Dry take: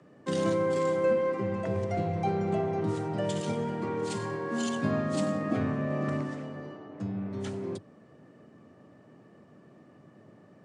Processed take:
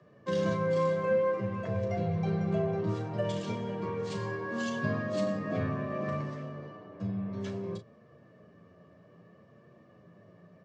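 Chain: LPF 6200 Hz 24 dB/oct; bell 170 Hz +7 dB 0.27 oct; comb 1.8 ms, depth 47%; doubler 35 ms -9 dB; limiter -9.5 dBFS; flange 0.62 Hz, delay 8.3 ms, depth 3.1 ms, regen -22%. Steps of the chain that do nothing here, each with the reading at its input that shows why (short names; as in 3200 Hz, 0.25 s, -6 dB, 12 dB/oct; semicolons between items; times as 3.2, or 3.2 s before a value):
limiter -9.5 dBFS: input peak -15.0 dBFS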